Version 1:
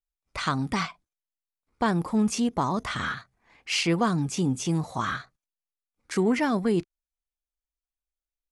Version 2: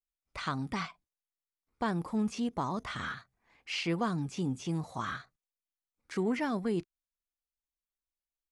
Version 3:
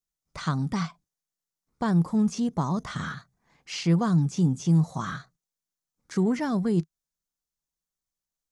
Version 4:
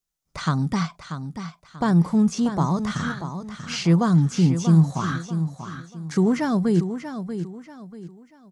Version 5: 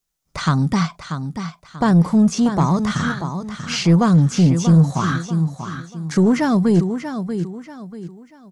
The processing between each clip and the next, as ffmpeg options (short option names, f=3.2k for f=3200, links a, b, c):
-filter_complex "[0:a]acrossover=split=5100[a][b];[b]acompressor=threshold=-46dB:ratio=4:attack=1:release=60[c];[a][c]amix=inputs=2:normalize=0,volume=-7.5dB"
-af "equalizer=f=160:t=o:w=0.67:g=12,equalizer=f=2.5k:t=o:w=0.67:g=-7,equalizer=f=6.3k:t=o:w=0.67:g=6,volume=3dB"
-af "aecho=1:1:637|1274|1911|2548:0.335|0.111|0.0365|0.012,volume=4.5dB"
-af "asoftclip=type=tanh:threshold=-12dB,volume=6dB"